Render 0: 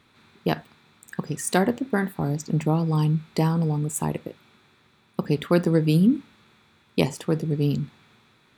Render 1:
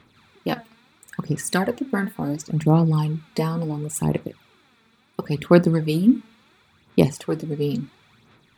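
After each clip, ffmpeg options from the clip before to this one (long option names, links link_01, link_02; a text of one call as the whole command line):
ffmpeg -i in.wav -af "aphaser=in_gain=1:out_gain=1:delay=4.5:decay=0.57:speed=0.72:type=sinusoidal,volume=-1dB" out.wav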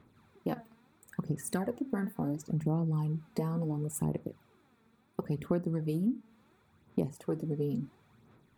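ffmpeg -i in.wav -af "equalizer=frequency=3600:width_type=o:width=2.5:gain=-13.5,acompressor=threshold=-25dB:ratio=4,volume=-4dB" out.wav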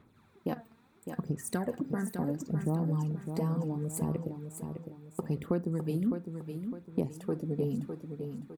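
ffmpeg -i in.wav -af "aecho=1:1:607|1214|1821|2428:0.422|0.164|0.0641|0.025" out.wav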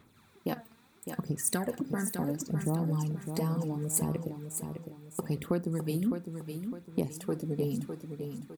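ffmpeg -i in.wav -af "highshelf=frequency=2400:gain=11" out.wav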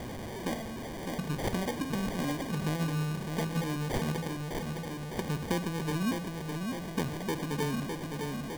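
ffmpeg -i in.wav -af "aeval=exprs='val(0)+0.5*0.0316*sgn(val(0))':channel_layout=same,bandreject=frequency=53.35:width_type=h:width=4,bandreject=frequency=106.7:width_type=h:width=4,bandreject=frequency=160.05:width_type=h:width=4,acrusher=samples=33:mix=1:aa=0.000001,volume=-3.5dB" out.wav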